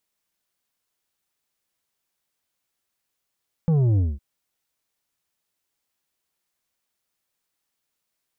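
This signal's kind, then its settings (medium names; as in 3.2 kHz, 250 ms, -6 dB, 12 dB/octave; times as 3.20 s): sub drop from 170 Hz, over 0.51 s, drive 7.5 dB, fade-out 0.21 s, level -17 dB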